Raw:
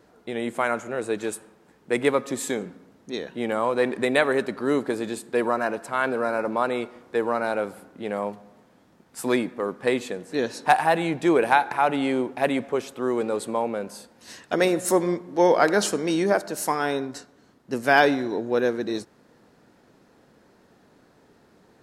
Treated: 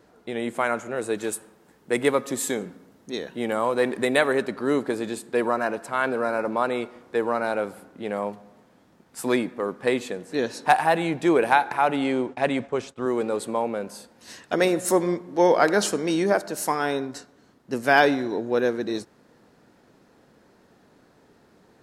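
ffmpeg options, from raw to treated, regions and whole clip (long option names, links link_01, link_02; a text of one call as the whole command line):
ffmpeg -i in.wav -filter_complex "[0:a]asettb=1/sr,asplit=3[link_01][link_02][link_03];[link_01]atrim=end=0.964[link_04];[link_02]atrim=start=0.96:end=4.32,asetpts=PTS-STARTPTS,afade=type=in:duration=0.004:curve=qsin,afade=type=out:start_time=3.356:duration=0.004:curve=qsin,highshelf=frequency=9100:gain=8.5,bandreject=frequency=2400:width=30[link_05];[link_03]atrim=start=4.316[link_06];[link_04][link_05]acrossfade=duration=0.004:curve1=hsin:curve2=qsin[link_07];[link_07][link_06]acrossfade=duration=0.004:curve1=qsin:curve2=hsin,asettb=1/sr,asplit=3[link_08][link_09][link_10];[link_08]atrim=end=12.044[link_11];[link_09]atrim=start=12.04:end=13.06,asetpts=PTS-STARTPTS,afade=type=in:duration=0.004:curve=qsin,afade=type=out:start_time=1.016:duration=0.004:curve=qsin,lowpass=frequency=8900:width=0.5412,lowpass=frequency=8900:width=1.3066,asubboost=boost=6:cutoff=170,agate=range=-33dB:threshold=-38dB:ratio=3:release=100:detection=peak[link_12];[link_10]atrim=start=13.056[link_13];[link_11][link_12]acrossfade=duration=0.004:curve1=hsin:curve2=qsin[link_14];[link_14][link_13]acrossfade=duration=0.004:curve1=qsin:curve2=hsin" out.wav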